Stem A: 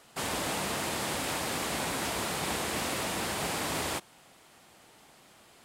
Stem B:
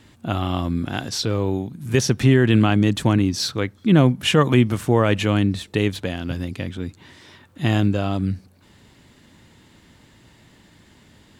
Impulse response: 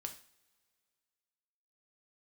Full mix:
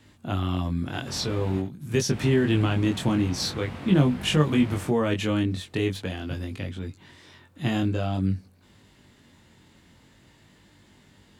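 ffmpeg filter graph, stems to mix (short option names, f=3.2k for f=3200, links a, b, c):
-filter_complex "[0:a]acrossover=split=4100[a][b];[b]acompressor=threshold=-48dB:ratio=4:attack=1:release=60[c];[a][c]amix=inputs=2:normalize=0,bass=f=250:g=14,treble=f=4k:g=-7,adelay=900,volume=-5.5dB,asplit=3[d][e][f];[d]atrim=end=1.6,asetpts=PTS-STARTPTS,afade=t=out:st=1.596:d=0.004:c=hsin[g];[e]atrim=start=1.6:end=2.12,asetpts=PTS-STARTPTS,volume=0[h];[f]atrim=start=2.12,asetpts=PTS-STARTPTS,afade=t=in:d=0.004:c=hsin[i];[g][h][i]concat=n=3:v=0:a=1,asplit=2[j][k];[k]volume=-12dB[l];[1:a]volume=-1.5dB[m];[l]aecho=0:1:72:1[n];[j][m][n]amix=inputs=3:normalize=0,acrossover=split=380|3000[o][p][q];[p]acompressor=threshold=-29dB:ratio=1.5[r];[o][r][q]amix=inputs=3:normalize=0,flanger=delay=20:depth=2.8:speed=0.46"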